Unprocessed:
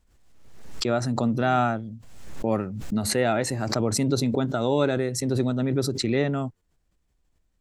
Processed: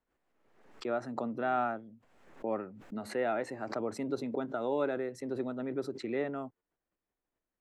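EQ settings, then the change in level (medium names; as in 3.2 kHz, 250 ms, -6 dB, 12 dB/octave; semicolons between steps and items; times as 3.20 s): three-band isolator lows -19 dB, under 240 Hz, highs -17 dB, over 2.5 kHz; -7.5 dB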